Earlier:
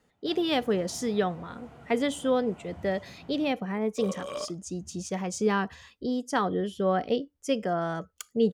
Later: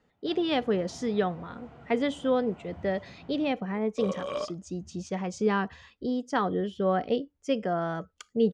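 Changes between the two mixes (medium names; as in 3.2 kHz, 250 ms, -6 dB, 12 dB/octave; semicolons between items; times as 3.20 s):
second sound +3.5 dB; master: add distance through air 110 m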